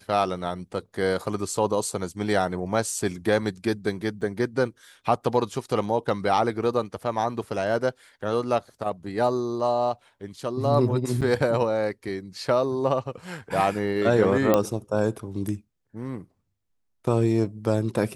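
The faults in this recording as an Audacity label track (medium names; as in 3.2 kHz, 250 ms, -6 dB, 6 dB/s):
4.210000	4.210000	dropout 4 ms
11.210000	11.220000	dropout 6.8 ms
14.540000	14.540000	pop -7 dBFS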